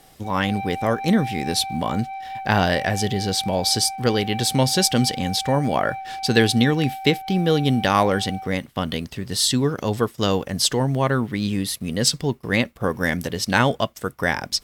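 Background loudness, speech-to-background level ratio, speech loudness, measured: -33.0 LUFS, 11.5 dB, -21.5 LUFS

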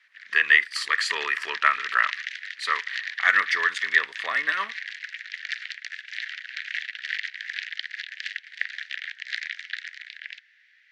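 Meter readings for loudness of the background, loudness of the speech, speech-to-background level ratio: -33.0 LUFS, -23.0 LUFS, 10.0 dB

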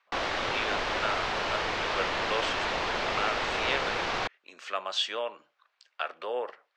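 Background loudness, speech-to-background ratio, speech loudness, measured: -30.0 LUFS, -4.5 dB, -34.5 LUFS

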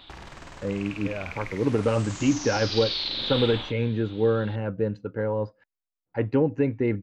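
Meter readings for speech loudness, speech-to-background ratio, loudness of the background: -26.5 LUFS, 5.5 dB, -32.0 LUFS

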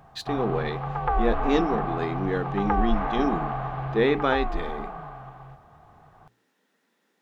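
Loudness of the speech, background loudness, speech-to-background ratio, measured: -27.5 LUFS, -30.0 LUFS, 2.5 dB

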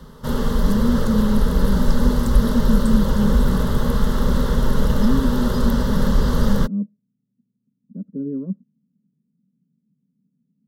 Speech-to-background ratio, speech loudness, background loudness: -3.5 dB, -25.0 LUFS, -21.5 LUFS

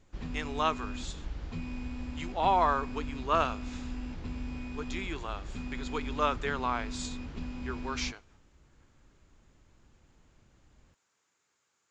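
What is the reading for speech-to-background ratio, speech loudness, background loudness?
8.0 dB, -32.5 LUFS, -40.5 LUFS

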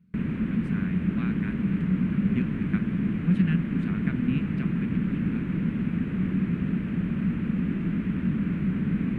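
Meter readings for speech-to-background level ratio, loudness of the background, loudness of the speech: -5.0 dB, -27.5 LUFS, -32.5 LUFS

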